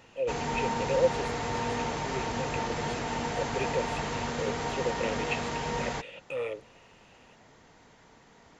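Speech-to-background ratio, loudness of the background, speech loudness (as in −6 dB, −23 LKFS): −3.0 dB, −32.5 LKFS, −35.5 LKFS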